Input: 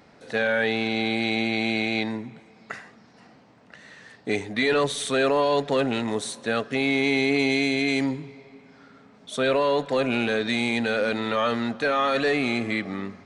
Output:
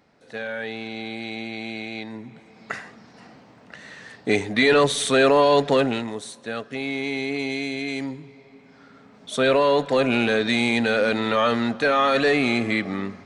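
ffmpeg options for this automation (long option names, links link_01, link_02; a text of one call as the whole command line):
ffmpeg -i in.wav -af "volume=13.5dB,afade=type=in:start_time=2.09:duration=0.65:silence=0.237137,afade=type=out:start_time=5.7:duration=0.42:silence=0.316228,afade=type=in:start_time=8.14:duration=1.22:silence=0.375837" out.wav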